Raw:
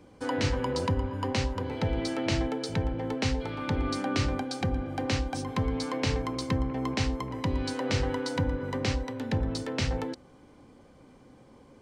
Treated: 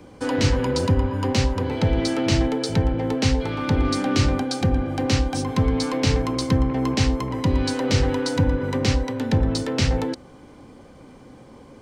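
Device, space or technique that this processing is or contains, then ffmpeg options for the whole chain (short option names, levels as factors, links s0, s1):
one-band saturation: -filter_complex "[0:a]acrossover=split=390|3700[s0][s1][s2];[s1]asoftclip=type=tanh:threshold=0.0211[s3];[s0][s3][s2]amix=inputs=3:normalize=0,volume=2.82"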